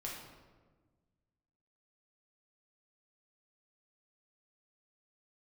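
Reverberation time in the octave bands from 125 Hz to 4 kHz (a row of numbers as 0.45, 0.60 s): 2.1, 1.9, 1.5, 1.2, 1.0, 0.85 s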